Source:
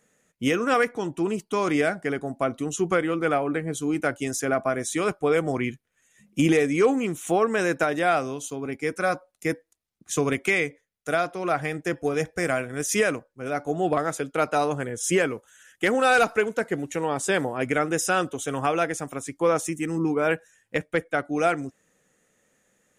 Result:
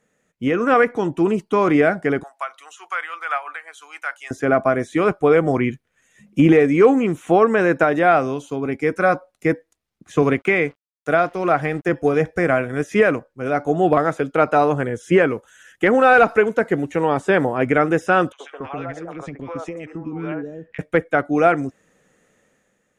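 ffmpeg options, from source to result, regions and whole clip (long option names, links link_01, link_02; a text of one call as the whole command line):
ffmpeg -i in.wav -filter_complex "[0:a]asettb=1/sr,asplit=3[link_01][link_02][link_03];[link_01]atrim=end=2.234[link_04];[link_02]atrim=start=2.23:end=4.31,asetpts=PTS-STARTPTS,afade=type=in:duration=0.004:curve=qsin,afade=type=out:start_time=2.076:duration=0.004:curve=qsin,highpass=frequency=960:width=0.5412,highpass=frequency=960:width=1.3066,tremolo=f=6.3:d=0.47[link_05];[link_03]atrim=start=4.306[link_06];[link_04][link_05]acrossfade=duration=0.004:curve1=hsin:curve2=qsin[link_07];[link_07][link_06]acrossfade=duration=0.004:curve1=qsin:curve2=hsin,asettb=1/sr,asplit=3[link_08][link_09][link_10];[link_08]atrim=end=10.224[link_11];[link_09]atrim=start=10.22:end=11.89,asetpts=PTS-STARTPTS,afade=type=in:duration=0.004:curve=qsin,afade=type=out:start_time=1.666:duration=0.004:curve=qsin,highpass=83,aeval=exprs='sgn(val(0))*max(abs(val(0))-0.00282,0)':channel_layout=same[link_12];[link_10]atrim=start=11.886[link_13];[link_11][link_12]acrossfade=duration=0.004:curve1=hsin:curve2=qsin[link_14];[link_14][link_13]acrossfade=duration=0.004:curve1=qsin:curve2=hsin,asettb=1/sr,asplit=3[link_15][link_16][link_17];[link_15]atrim=end=18.324[link_18];[link_16]atrim=start=18.32:end=20.79,asetpts=PTS-STARTPTS,afade=type=in:duration=0.004:curve=qsin,afade=type=out:start_time=2.466:duration=0.004:curve=qsin,lowpass=3200,acompressor=threshold=-32dB:ratio=6:attack=3.2:release=140:knee=1:detection=peak,acrossover=split=480|1500[link_19][link_20][link_21];[link_20]adelay=70[link_22];[link_19]adelay=270[link_23];[link_23][link_22][link_21]amix=inputs=3:normalize=0,atrim=end_sample=108927[link_24];[link_17]atrim=start=20.786[link_25];[link_18][link_24]acrossfade=duration=0.004:curve1=hsin:curve2=qsin[link_26];[link_26][link_25]acrossfade=duration=0.004:curve1=qsin:curve2=hsin,acrossover=split=2600[link_27][link_28];[link_28]acompressor=threshold=-46dB:ratio=4:attack=1:release=60[link_29];[link_27][link_29]amix=inputs=2:normalize=0,aemphasis=mode=reproduction:type=cd,dynaudnorm=framelen=100:gausssize=11:maxgain=8dB" out.wav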